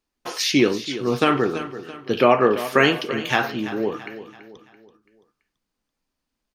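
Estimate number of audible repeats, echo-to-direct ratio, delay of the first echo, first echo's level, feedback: 3, -12.5 dB, 0.334 s, -13.5 dB, 43%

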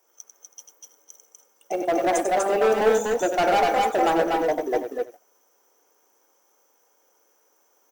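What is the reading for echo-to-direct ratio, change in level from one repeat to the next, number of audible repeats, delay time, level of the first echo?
-1.0 dB, no steady repeat, 3, 95 ms, -7.5 dB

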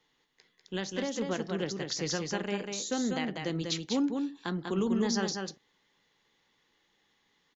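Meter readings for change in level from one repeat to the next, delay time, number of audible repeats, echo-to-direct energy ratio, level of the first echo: no steady repeat, 0.195 s, 1, -4.5 dB, -4.5 dB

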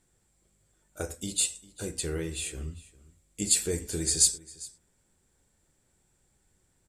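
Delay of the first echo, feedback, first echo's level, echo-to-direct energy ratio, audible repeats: 0.401 s, no steady repeat, -20.5 dB, -20.5 dB, 1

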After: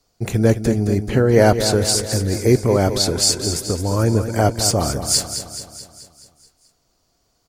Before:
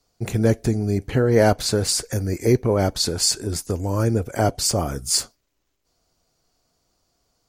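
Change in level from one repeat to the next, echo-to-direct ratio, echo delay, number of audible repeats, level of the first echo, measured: -5.0 dB, -8.0 dB, 0.215 s, 6, -9.5 dB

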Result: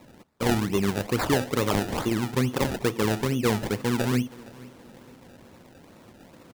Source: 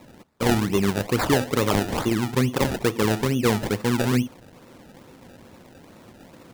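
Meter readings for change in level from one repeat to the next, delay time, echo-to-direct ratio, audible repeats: -8.5 dB, 0.466 s, -20.5 dB, 2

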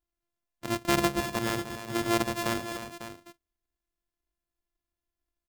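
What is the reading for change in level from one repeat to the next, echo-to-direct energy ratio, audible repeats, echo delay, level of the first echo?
no steady repeat, -8.5 dB, 2, 0.303 s, -11.0 dB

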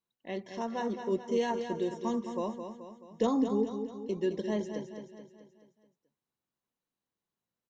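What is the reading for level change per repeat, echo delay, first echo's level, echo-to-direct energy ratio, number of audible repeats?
-6.0 dB, 0.215 s, -8.0 dB, -6.5 dB, 5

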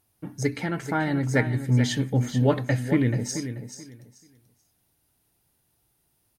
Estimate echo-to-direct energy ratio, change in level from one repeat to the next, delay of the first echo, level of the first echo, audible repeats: -10.0 dB, -13.5 dB, 0.434 s, -10.0 dB, 2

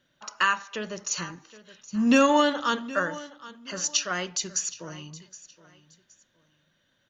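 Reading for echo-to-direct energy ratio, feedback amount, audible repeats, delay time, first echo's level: -17.5 dB, 27%, 2, 0.769 s, -18.0 dB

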